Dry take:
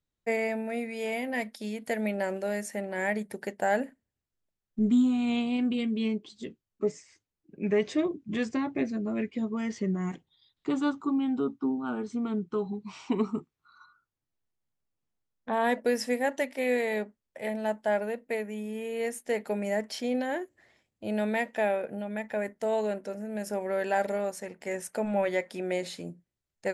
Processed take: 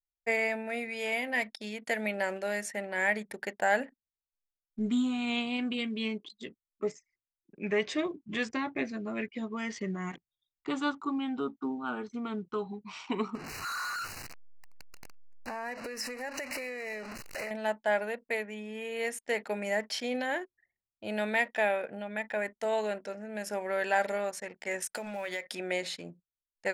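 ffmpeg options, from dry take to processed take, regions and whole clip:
-filter_complex "[0:a]asettb=1/sr,asplit=3[a][b][c];[a]atrim=end=13.354[d];[b]atrim=start=13.35:end=17.51,asetpts=PTS-STARTPTS,afade=t=in:d=0.004:c=qsin,afade=t=out:st=4.156:d=0.004:c=qsin,aeval=exprs='val(0)+0.5*0.0237*sgn(val(0))':c=same,acompressor=threshold=-33dB:ratio=12:attack=3.2:release=140:knee=1:detection=peak,asuperstop=centerf=3400:order=20:qfactor=3.5[e];[c]atrim=start=17.506[f];[d][e]acrossfade=d=0.004:c1=hsin:c2=qsin[g];[g][f]acrossfade=d=0.004:c1=qsin:c2=hsin,asettb=1/sr,asplit=3[h][i][j];[h]atrim=end=24.824[k];[i]atrim=start=24.82:end=25.55,asetpts=PTS-STARTPTS,afade=t=in:d=0.004:c=qsin,afade=t=out:st=0.726:d=0.004:c=qsin,highshelf=f=3.2k:g=9,acompressor=threshold=-31dB:ratio=8:attack=3.2:release=140:knee=1:detection=peak,acrusher=bits=7:mode=log:mix=0:aa=0.000001[l];[j]atrim=start=25.546[m];[k][l]acrossfade=d=0.004:c1=hsin:c2=qsin[n];[n][m]acrossfade=d=0.004:c1=qsin:c2=hsin,aemphasis=mode=reproduction:type=cd,anlmdn=0.00251,tiltshelf=f=830:g=-7.5"

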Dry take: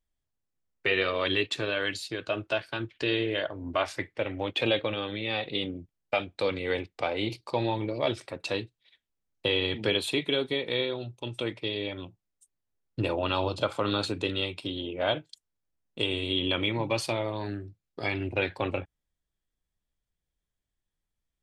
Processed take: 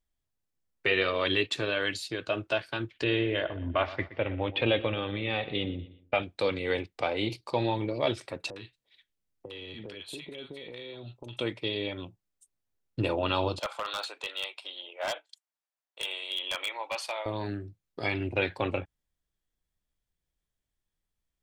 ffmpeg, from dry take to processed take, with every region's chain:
-filter_complex "[0:a]asettb=1/sr,asplit=3[a][b][c];[a]atrim=end=3.044[d];[b]atrim=start=3.04:end=6.23,asetpts=PTS-STARTPTS,afade=t=in:d=0.004:c=qsin,afade=t=out:st=3.186:d=0.004:c=qsin,lowpass=f=3.5k:w=0.5412,lowpass=f=3.5k:w=1.3066,equalizer=f=66:t=o:w=1:g=12,aecho=1:1:121|242|363:0.158|0.0523|0.0173,atrim=end_sample=140679[e];[c]atrim=start=6.226[f];[d][e]acrossfade=d=0.004:c1=hsin:c2=qsin[g];[g][f]acrossfade=d=0.004:c1=qsin:c2=hsin,asettb=1/sr,asplit=3[h][i][j];[h]atrim=end=8.504[k];[i]atrim=start=8.5:end=11.37,asetpts=PTS-STARTPTS,afade=t=in:d=0.004:c=qsin,afade=t=out:st=2.866:d=0.004:c=qsin,acompressor=threshold=-38dB:ratio=8:attack=3.2:release=140:knee=1:detection=peak,acrossover=split=970[l][m];[m]adelay=60[n];[l][n]amix=inputs=2:normalize=0,atrim=end_sample=126567[o];[j]atrim=start=11.366[p];[k][o]acrossfade=d=0.004:c1=hsin:c2=qsin[q];[q][p]acrossfade=d=0.004:c1=qsin:c2=hsin,asettb=1/sr,asplit=3[r][s][t];[r]atrim=end=13.594[u];[s]atrim=start=13.59:end=17.26,asetpts=PTS-STARTPTS,afade=t=in:d=0.004:c=qsin,afade=t=out:st=3.666:d=0.004:c=qsin,highpass=f=660:w=0.5412,highpass=f=660:w=1.3066,highshelf=f=3.1k:g=-5.5,aeval=exprs='0.0596*(abs(mod(val(0)/0.0596+3,4)-2)-1)':c=same[v];[t]atrim=start=17.256[w];[u][v]acrossfade=d=0.004:c1=hsin:c2=qsin[x];[x][w]acrossfade=d=0.004:c1=qsin:c2=hsin"

